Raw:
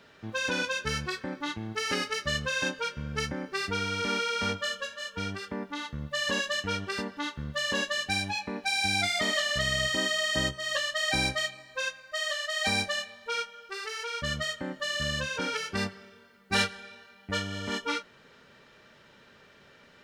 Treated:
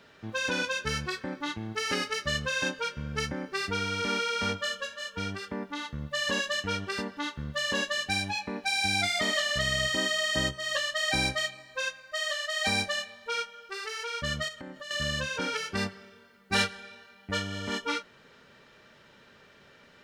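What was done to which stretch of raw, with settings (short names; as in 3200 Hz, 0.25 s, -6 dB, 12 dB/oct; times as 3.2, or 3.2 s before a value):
14.48–14.91 compressor, threshold -38 dBFS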